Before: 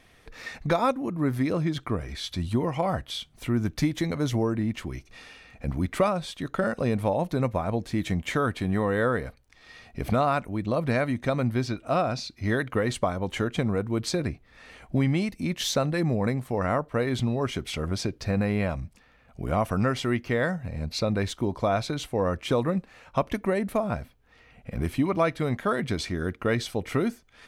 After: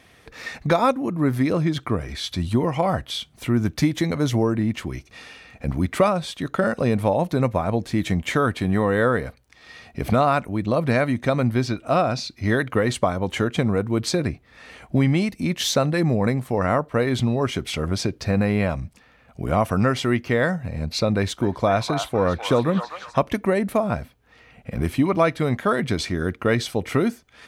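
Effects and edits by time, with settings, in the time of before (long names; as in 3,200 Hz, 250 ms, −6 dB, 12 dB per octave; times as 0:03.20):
0:21.13–0:23.19: echo through a band-pass that steps 252 ms, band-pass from 1,000 Hz, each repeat 0.7 octaves, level −4 dB
whole clip: high-pass filter 60 Hz; level +5 dB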